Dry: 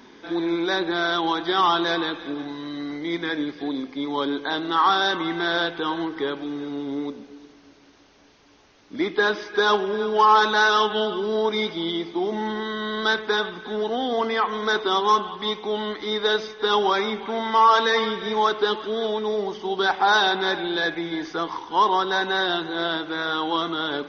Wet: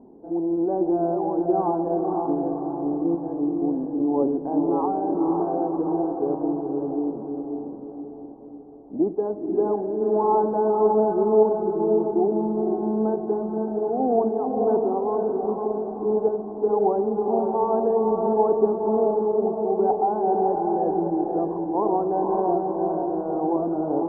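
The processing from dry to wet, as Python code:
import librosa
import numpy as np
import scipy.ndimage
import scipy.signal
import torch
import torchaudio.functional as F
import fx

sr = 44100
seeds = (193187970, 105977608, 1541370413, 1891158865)

y = fx.tremolo_random(x, sr, seeds[0], hz=3.5, depth_pct=55)
y = scipy.signal.sosfilt(scipy.signal.ellip(4, 1.0, 70, 770.0, 'lowpass', fs=sr, output='sos'), y)
y = fx.echo_diffused(y, sr, ms=528, feedback_pct=50, wet_db=-3.0)
y = F.gain(torch.from_numpy(y), 5.0).numpy()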